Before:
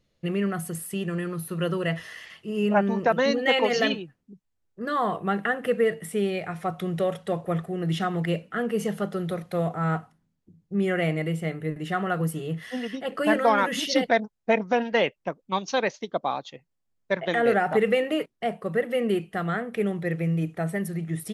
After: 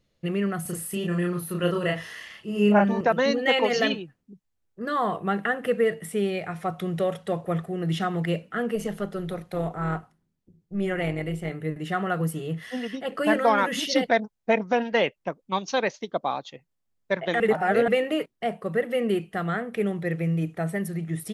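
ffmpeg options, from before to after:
ffmpeg -i in.wav -filter_complex "[0:a]asettb=1/sr,asplit=3[link_01][link_02][link_03];[link_01]atrim=end=0.624[link_04];[link_02]atrim=start=0.62:end=3.01,asetpts=PTS-STARTPTS,afade=type=in:duration=0.004:curve=qsin,afade=type=out:start_time=2.386:duration=0.004:curve=qsin,asplit=2[link_05][link_06];[link_06]adelay=34,volume=-2dB[link_07];[link_05][link_07]amix=inputs=2:normalize=0,atrim=end_sample=105399[link_08];[link_03]atrim=start=3.006[link_09];[link_04][link_08]acrossfade=duration=0.004:curve1=hsin:curve2=qsin[link_10];[link_10][link_09]acrossfade=duration=0.004:curve1=qsin:curve2=hsin,asettb=1/sr,asplit=3[link_11][link_12][link_13];[link_11]atrim=end=8.754[link_14];[link_12]atrim=start=8.75:end=11.51,asetpts=PTS-STARTPTS,afade=type=in:duration=0.004:curve=qsin,afade=type=out:start_time=2.756:duration=0.004:curve=qsin,tremolo=f=200:d=0.519[link_15];[link_13]atrim=start=11.506[link_16];[link_14][link_15]acrossfade=duration=0.004:curve1=hsin:curve2=qsin[link_17];[link_17][link_16]acrossfade=duration=0.004:curve1=qsin:curve2=hsin,asplit=3[link_18][link_19][link_20];[link_18]atrim=end=17.402[link_21];[link_19]atrim=start=17.398:end=17.882,asetpts=PTS-STARTPTS,areverse[link_22];[link_20]atrim=start=17.878[link_23];[link_21][link_22]acrossfade=duration=0.004:curve1=hsin:curve2=hsin[link_24];[link_24][link_23]acrossfade=duration=0.004:curve1=hsin:curve2=hsin" out.wav

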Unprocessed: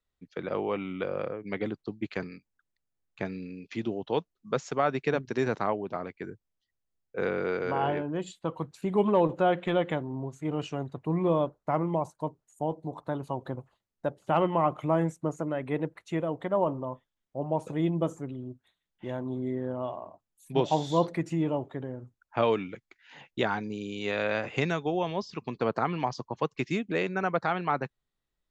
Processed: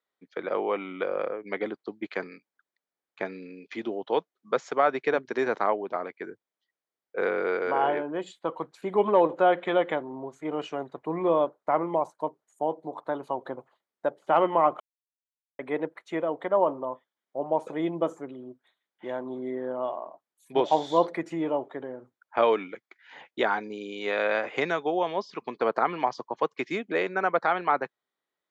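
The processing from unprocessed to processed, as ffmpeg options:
ffmpeg -i in.wav -filter_complex "[0:a]asplit=3[link_01][link_02][link_03];[link_01]atrim=end=14.8,asetpts=PTS-STARTPTS,afade=type=out:start_time=14.796:duration=0.004:curve=hsin[link_04];[link_02]atrim=start=14.8:end=15.59,asetpts=PTS-STARTPTS,volume=0[link_05];[link_03]atrim=start=15.59,asetpts=PTS-STARTPTS,afade=type=in:duration=0.004:curve=hsin[link_06];[link_04][link_05][link_06]concat=n=3:v=0:a=1,highpass=180,bass=frequency=250:gain=-14,treble=frequency=4000:gain=-10,bandreject=frequency=2700:width=9.8,volume=4.5dB" out.wav

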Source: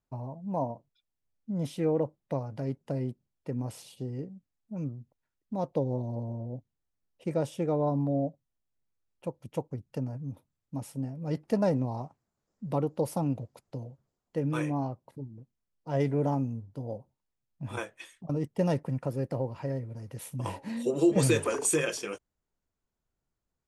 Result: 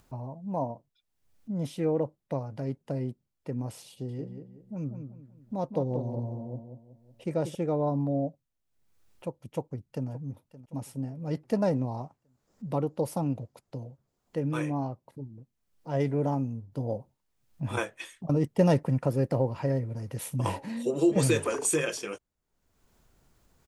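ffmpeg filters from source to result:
ffmpeg -i in.wav -filter_complex "[0:a]asettb=1/sr,asplit=3[link_01][link_02][link_03];[link_01]atrim=end=3.904[link_04];[link_02]atrim=start=3.9:end=7.55,asetpts=PTS-STARTPTS,afade=type=in:duration=0.004:curve=qsin,afade=type=out:start_time=3.646:duration=0.004:curve=qsin,asplit=2[link_05][link_06];[link_06]adelay=186,lowpass=frequency=2900:poles=1,volume=-7.5dB,asplit=2[link_07][link_08];[link_08]adelay=186,lowpass=frequency=2900:poles=1,volume=0.32,asplit=2[link_09][link_10];[link_10]adelay=186,lowpass=frequency=2900:poles=1,volume=0.32,asplit=2[link_11][link_12];[link_12]adelay=186,lowpass=frequency=2900:poles=1,volume=0.32[link_13];[link_05][link_07][link_09][link_11][link_13]amix=inputs=5:normalize=0,atrim=end_sample=160965[link_14];[link_03]atrim=start=7.546[link_15];[link_04][link_14]acrossfade=duration=0.004:curve1=hsin:curve2=qsin[link_16];[link_16][link_15]acrossfade=duration=0.004:curve1=qsin:curve2=hsin,asplit=2[link_17][link_18];[link_18]afade=type=in:start_time=9.42:duration=0.01,afade=type=out:start_time=10.08:duration=0.01,aecho=0:1:570|1140|1710|2280:0.133352|0.0600085|0.0270038|0.0121517[link_19];[link_17][link_19]amix=inputs=2:normalize=0,asettb=1/sr,asplit=3[link_20][link_21][link_22];[link_20]atrim=end=16.724[link_23];[link_21]atrim=start=16.72:end=20.66,asetpts=PTS-STARTPTS,afade=type=in:duration=0.004:curve=qsin,afade=type=out:start_time=3.936:duration=0.004:curve=qsin,acontrast=32[link_24];[link_22]atrim=start=20.656[link_25];[link_23][link_24]acrossfade=duration=0.004:curve1=hsin:curve2=qsin[link_26];[link_26][link_25]acrossfade=duration=0.004:curve1=qsin:curve2=hsin,acompressor=mode=upward:threshold=-46dB:ratio=2.5" out.wav

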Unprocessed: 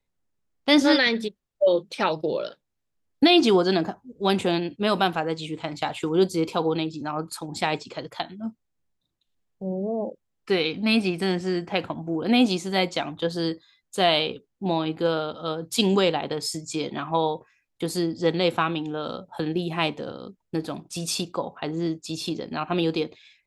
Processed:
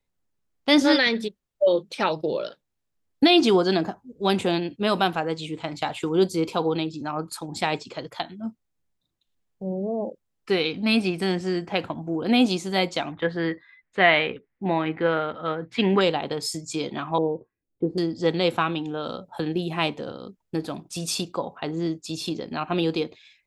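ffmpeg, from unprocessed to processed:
ffmpeg -i in.wav -filter_complex "[0:a]asettb=1/sr,asplit=3[link_01][link_02][link_03];[link_01]atrim=end=13.124[link_04];[link_02]atrim=start=13.12:end=16.01,asetpts=PTS-STARTPTS,afade=type=in:duration=0.004:curve=qsin,afade=type=out:start_time=2.886:duration=0.004:curve=qsin,lowpass=frequency=2000:width_type=q:width=5.1[link_05];[link_03]atrim=start=16.006[link_06];[link_04][link_05]acrossfade=duration=0.004:curve1=hsin:curve2=qsin[link_07];[link_07][link_06]acrossfade=duration=0.004:curve1=qsin:curve2=hsin,asettb=1/sr,asplit=3[link_08][link_09][link_10];[link_08]atrim=end=17.184[link_11];[link_09]atrim=start=17.18:end=17.98,asetpts=PTS-STARTPTS,afade=type=in:duration=0.004:curve=qsin,afade=type=out:start_time=0.796:duration=0.004:curve=qsin,lowpass=frequency=400:width_type=q:width=1.7[link_12];[link_10]atrim=start=17.976[link_13];[link_11][link_12]acrossfade=duration=0.004:curve1=hsin:curve2=qsin[link_14];[link_14][link_13]acrossfade=duration=0.004:curve1=qsin:curve2=hsin" out.wav

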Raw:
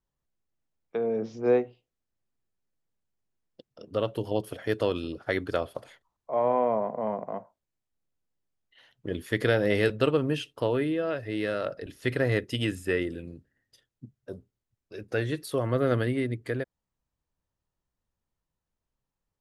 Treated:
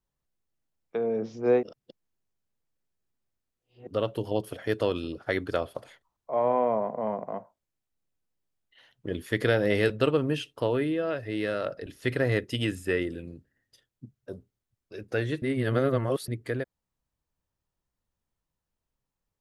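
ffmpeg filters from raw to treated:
ffmpeg -i in.wav -filter_complex "[0:a]asplit=5[link_01][link_02][link_03][link_04][link_05];[link_01]atrim=end=1.632[link_06];[link_02]atrim=start=1.628:end=3.872,asetpts=PTS-STARTPTS,areverse[link_07];[link_03]atrim=start=3.868:end=15.422[link_08];[link_04]atrim=start=15.418:end=16.282,asetpts=PTS-STARTPTS,areverse[link_09];[link_05]atrim=start=16.278[link_10];[link_06][link_07]acrossfade=duration=0.004:curve1=hsin:curve2=hsin[link_11];[link_11][link_08]acrossfade=duration=0.004:curve1=hsin:curve2=hsin[link_12];[link_12][link_09]acrossfade=duration=0.004:curve1=hsin:curve2=hsin[link_13];[link_13][link_10]acrossfade=duration=0.004:curve1=hsin:curve2=hsin" out.wav

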